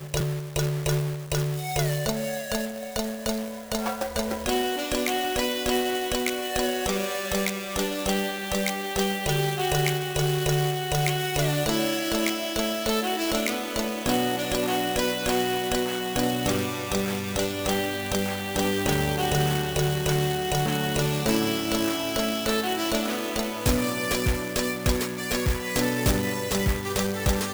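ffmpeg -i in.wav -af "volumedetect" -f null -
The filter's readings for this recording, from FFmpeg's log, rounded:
mean_volume: -26.0 dB
max_volume: -9.8 dB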